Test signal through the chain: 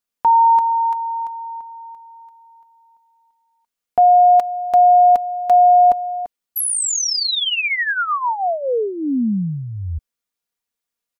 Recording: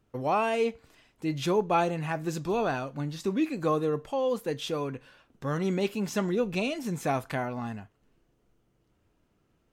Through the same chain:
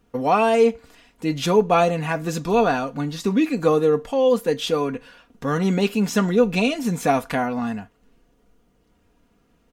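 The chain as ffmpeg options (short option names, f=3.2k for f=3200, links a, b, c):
-af "aecho=1:1:4.2:0.55,volume=7.5dB"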